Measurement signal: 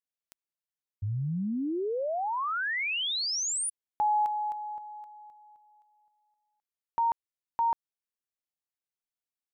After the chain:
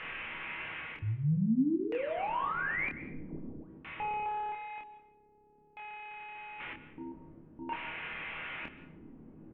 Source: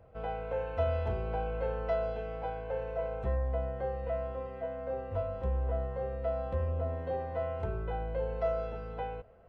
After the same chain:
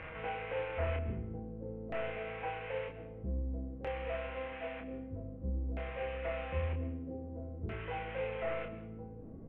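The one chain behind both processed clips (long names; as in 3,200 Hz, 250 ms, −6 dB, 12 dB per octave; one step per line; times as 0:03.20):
linear delta modulator 16 kbit/s, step −40 dBFS
parametric band 660 Hz −4.5 dB 0.36 octaves
mains-hum notches 60/120/180/240/300/360/420/480 Hz
reversed playback
upward compression, threshold −39 dBFS
reversed playback
tuned comb filter 160 Hz, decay 0.71 s, harmonics all, mix 80%
in parallel at −5.5 dB: hard clipping −39 dBFS
on the sum: auto-filter low-pass square 0.52 Hz 270–2,400 Hz
double-tracking delay 27 ms −4.5 dB
dense smooth reverb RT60 0.76 s, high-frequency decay 0.85×, pre-delay 115 ms, DRR 13.5 dB
level +4.5 dB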